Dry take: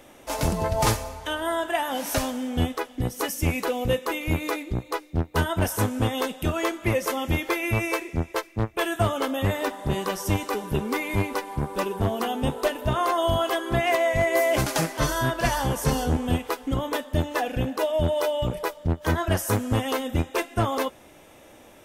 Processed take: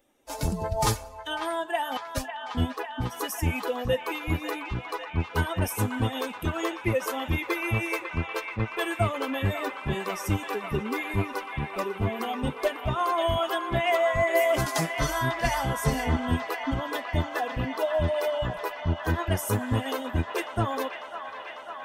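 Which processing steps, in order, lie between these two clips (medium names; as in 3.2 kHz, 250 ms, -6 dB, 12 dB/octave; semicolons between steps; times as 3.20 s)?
expander on every frequency bin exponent 1.5; 1.97–2.55 s: gate -28 dBFS, range -35 dB; feedback echo behind a band-pass 547 ms, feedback 83%, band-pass 1.6 kHz, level -6.5 dB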